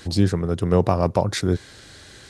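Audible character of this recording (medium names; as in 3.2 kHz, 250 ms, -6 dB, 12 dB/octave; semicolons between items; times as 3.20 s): noise floor -46 dBFS; spectral tilt -6.5 dB/octave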